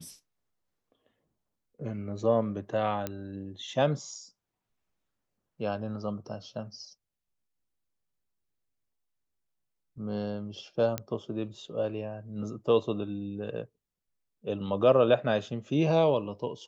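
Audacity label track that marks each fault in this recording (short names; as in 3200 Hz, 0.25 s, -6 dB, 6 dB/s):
3.070000	3.070000	pop -17 dBFS
10.980000	10.980000	pop -15 dBFS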